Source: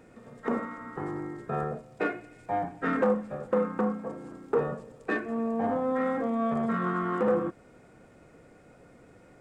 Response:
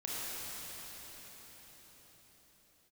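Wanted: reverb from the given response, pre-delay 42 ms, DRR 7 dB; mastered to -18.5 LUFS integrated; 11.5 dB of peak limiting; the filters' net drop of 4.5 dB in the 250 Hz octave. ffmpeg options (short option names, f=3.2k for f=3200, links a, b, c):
-filter_complex "[0:a]equalizer=f=250:t=o:g=-5.5,alimiter=level_in=3dB:limit=-24dB:level=0:latency=1,volume=-3dB,asplit=2[a][b];[1:a]atrim=start_sample=2205,adelay=42[c];[b][c]afir=irnorm=-1:irlink=0,volume=-11dB[d];[a][d]amix=inputs=2:normalize=0,volume=17.5dB"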